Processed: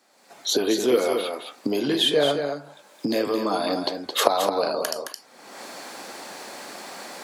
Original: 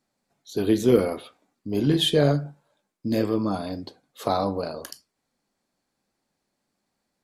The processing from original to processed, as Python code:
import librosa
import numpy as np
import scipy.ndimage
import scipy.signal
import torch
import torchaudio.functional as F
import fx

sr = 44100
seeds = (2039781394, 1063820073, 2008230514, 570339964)

p1 = fx.recorder_agc(x, sr, target_db=-14.0, rise_db_per_s=33.0, max_gain_db=30)
p2 = scipy.signal.sosfilt(scipy.signal.butter(2, 440.0, 'highpass', fs=sr, output='sos'), p1)
p3 = fx.high_shelf(p2, sr, hz=9700.0, db=-4.5)
p4 = p3 + fx.echo_single(p3, sr, ms=217, db=-8.0, dry=0)
p5 = fx.band_squash(p4, sr, depth_pct=40)
y = p5 * 10.0 ** (4.0 / 20.0)